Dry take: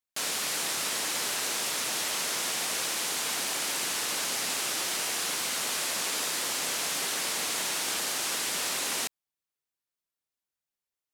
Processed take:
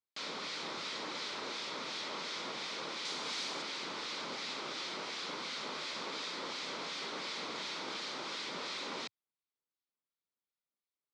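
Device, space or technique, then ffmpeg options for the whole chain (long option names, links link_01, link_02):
guitar amplifier with harmonic tremolo: -filter_complex "[0:a]acrossover=split=1500[link_01][link_02];[link_01]aeval=exprs='val(0)*(1-0.5/2+0.5/2*cos(2*PI*2.8*n/s))':channel_layout=same[link_03];[link_02]aeval=exprs='val(0)*(1-0.5/2-0.5/2*cos(2*PI*2.8*n/s))':channel_layout=same[link_04];[link_03][link_04]amix=inputs=2:normalize=0,asoftclip=type=tanh:threshold=-26dB,highpass=110,equalizer=frequency=110:width_type=q:width=4:gain=-9,equalizer=frequency=720:width_type=q:width=4:gain=-7,equalizer=frequency=1700:width_type=q:width=4:gain=-8,equalizer=frequency=2800:width_type=q:width=4:gain=-8,lowpass=frequency=4300:width=0.5412,lowpass=frequency=4300:width=1.3066,asettb=1/sr,asplit=3[link_05][link_06][link_07];[link_05]atrim=end=3.054[link_08];[link_06]atrim=start=3.05:end=3.62,asetpts=PTS-STARTPTS,afade=type=in:duration=0.004:curve=qsin,afade=type=out:start_time=0.566:duration=0.004:curve=qsin,aemphasis=mode=production:type=cd[link_09];[link_07]atrim=start=3.616[link_10];[link_08][link_09]acrossfade=duration=0.004:curve1=hsin:curve2=qsin[link_11];[link_11][link_10]acrossfade=duration=0.004:curve1=qsin:curve2=hsin"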